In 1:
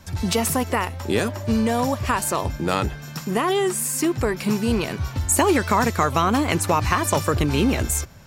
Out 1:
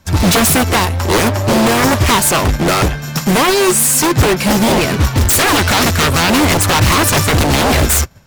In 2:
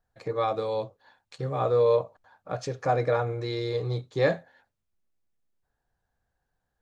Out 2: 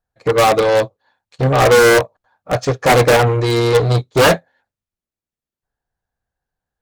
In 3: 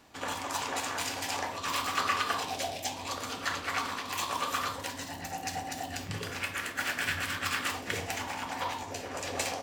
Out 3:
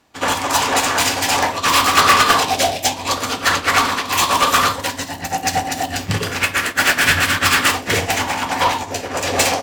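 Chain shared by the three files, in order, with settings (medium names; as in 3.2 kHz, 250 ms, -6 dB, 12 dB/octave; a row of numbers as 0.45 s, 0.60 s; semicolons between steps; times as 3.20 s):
wavefolder -21 dBFS; Chebyshev shaper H 5 -13 dB, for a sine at -21 dBFS; upward expansion 2.5:1, over -43 dBFS; peak normalisation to -1.5 dBFS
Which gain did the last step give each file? +17.5 dB, +18.0 dB, +18.0 dB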